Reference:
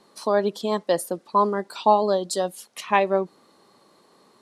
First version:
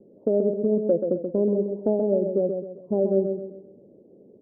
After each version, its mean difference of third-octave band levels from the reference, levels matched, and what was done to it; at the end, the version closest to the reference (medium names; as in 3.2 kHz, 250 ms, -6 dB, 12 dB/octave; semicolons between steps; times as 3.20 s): 12.5 dB: steep low-pass 560 Hz 48 dB/octave; compression 2:1, threshold -30 dBFS, peak gain reduction 6.5 dB; on a send: feedback delay 131 ms, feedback 38%, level -6 dB; on the sum: trim +8 dB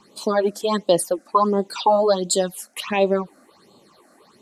3.5 dB: peak limiter -11.5 dBFS, peak gain reduction 7 dB; phase shifter stages 8, 1.4 Hz, lowest notch 120–1800 Hz; dynamic bell 5.9 kHz, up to +4 dB, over -53 dBFS, Q 1; trim +7 dB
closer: second